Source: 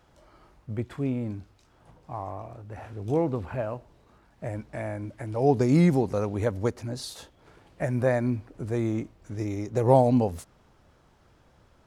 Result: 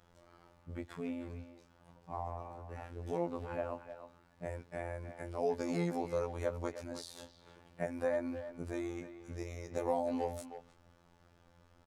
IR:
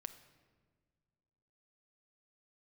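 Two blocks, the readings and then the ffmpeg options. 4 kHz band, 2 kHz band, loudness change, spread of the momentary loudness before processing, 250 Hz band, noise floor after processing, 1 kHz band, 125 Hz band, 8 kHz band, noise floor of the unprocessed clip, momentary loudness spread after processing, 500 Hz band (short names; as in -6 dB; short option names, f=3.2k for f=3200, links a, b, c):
-9.0 dB, -8.5 dB, -12.5 dB, 19 LU, -13.5 dB, -66 dBFS, -10.0 dB, -17.0 dB, -8.5 dB, -61 dBFS, 15 LU, -10.0 dB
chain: -filter_complex "[0:a]acrossover=split=490|1100[a][b][c];[a]acompressor=threshold=-35dB:ratio=4[d];[b]acompressor=threshold=-28dB:ratio=4[e];[c]acompressor=threshold=-42dB:ratio=4[f];[d][e][f]amix=inputs=3:normalize=0,afftfilt=real='hypot(re,im)*cos(PI*b)':imag='0':win_size=2048:overlap=0.75,asplit=2[g][h];[h]adelay=310,highpass=300,lowpass=3.4k,asoftclip=type=hard:threshold=-26.5dB,volume=-10dB[i];[g][i]amix=inputs=2:normalize=0,volume=-2dB"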